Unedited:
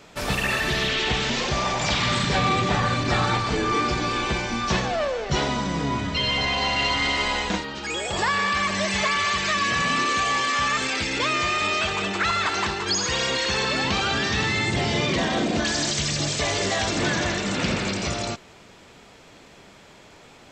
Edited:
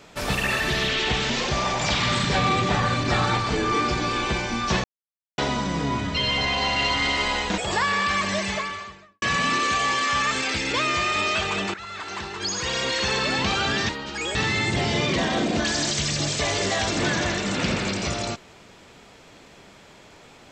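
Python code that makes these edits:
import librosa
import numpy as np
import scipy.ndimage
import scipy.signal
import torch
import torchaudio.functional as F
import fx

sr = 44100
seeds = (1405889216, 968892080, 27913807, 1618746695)

y = fx.studio_fade_out(x, sr, start_s=8.69, length_s=0.99)
y = fx.edit(y, sr, fx.silence(start_s=4.84, length_s=0.54),
    fx.move(start_s=7.58, length_s=0.46, to_s=14.35),
    fx.fade_in_from(start_s=12.2, length_s=1.29, floor_db=-18.0), tone=tone)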